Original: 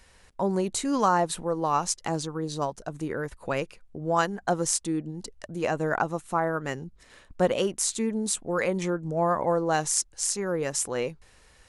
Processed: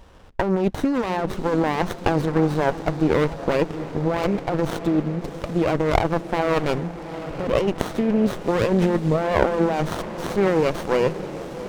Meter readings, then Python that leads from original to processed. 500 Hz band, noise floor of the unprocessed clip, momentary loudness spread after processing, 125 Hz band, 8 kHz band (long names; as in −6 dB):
+6.5 dB, −57 dBFS, 8 LU, +9.0 dB, −14.5 dB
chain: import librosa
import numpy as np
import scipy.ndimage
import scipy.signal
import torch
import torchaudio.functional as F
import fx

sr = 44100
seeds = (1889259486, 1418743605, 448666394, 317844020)

p1 = fx.self_delay(x, sr, depth_ms=0.19)
p2 = fx.backlash(p1, sr, play_db=-26.5)
p3 = p1 + (p2 * 10.0 ** (-4.5 / 20.0))
p4 = fx.over_compress(p3, sr, threshold_db=-26.0, ratio=-1.0)
p5 = scipy.signal.sosfilt(scipy.signal.butter(2, 4100.0, 'lowpass', fs=sr, output='sos'), p4)
p6 = p5 + fx.echo_diffused(p5, sr, ms=717, feedback_pct=63, wet_db=-13.5, dry=0)
p7 = fx.running_max(p6, sr, window=17)
y = p7 * 10.0 ** (7.5 / 20.0)